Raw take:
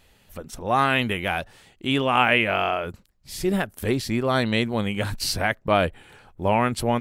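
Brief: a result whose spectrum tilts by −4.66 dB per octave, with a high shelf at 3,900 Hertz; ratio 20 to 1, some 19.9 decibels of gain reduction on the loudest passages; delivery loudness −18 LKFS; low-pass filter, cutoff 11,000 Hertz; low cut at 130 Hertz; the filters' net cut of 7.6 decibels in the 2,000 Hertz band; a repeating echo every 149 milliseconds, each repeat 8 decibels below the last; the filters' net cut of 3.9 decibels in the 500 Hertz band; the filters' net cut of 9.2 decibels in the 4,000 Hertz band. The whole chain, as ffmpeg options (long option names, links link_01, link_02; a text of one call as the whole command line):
ffmpeg -i in.wav -af "highpass=130,lowpass=11000,equalizer=frequency=500:width_type=o:gain=-4.5,equalizer=frequency=2000:width_type=o:gain=-6.5,highshelf=frequency=3900:gain=-5,equalizer=frequency=4000:width_type=o:gain=-7,acompressor=threshold=-38dB:ratio=20,aecho=1:1:149|298|447|596|745:0.398|0.159|0.0637|0.0255|0.0102,volume=25dB" out.wav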